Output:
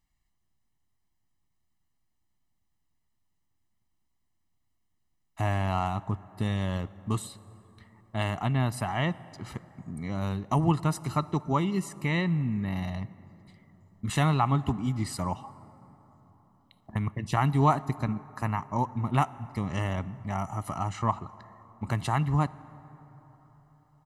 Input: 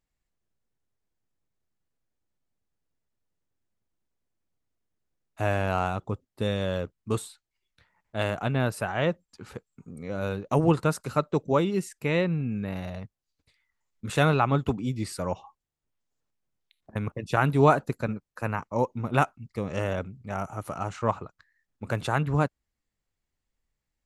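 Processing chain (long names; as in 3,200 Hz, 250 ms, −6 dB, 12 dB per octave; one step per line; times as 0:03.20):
comb filter 1 ms, depth 75%
in parallel at +3 dB: downward compressor, threshold −32 dBFS, peak gain reduction 18 dB
on the sum: dense smooth reverb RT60 4.4 s, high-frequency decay 0.4×, DRR 17.5 dB
level −6 dB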